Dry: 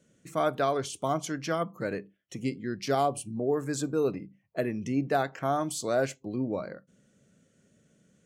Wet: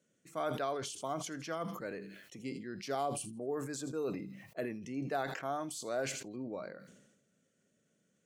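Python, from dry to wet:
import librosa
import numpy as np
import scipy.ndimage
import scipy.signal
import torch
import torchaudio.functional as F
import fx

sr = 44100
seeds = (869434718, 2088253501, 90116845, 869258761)

y = fx.highpass(x, sr, hz=260.0, slope=6)
y = fx.echo_wet_highpass(y, sr, ms=81, feedback_pct=34, hz=3100.0, wet_db=-17.0)
y = fx.sustainer(y, sr, db_per_s=54.0)
y = y * 10.0 ** (-8.5 / 20.0)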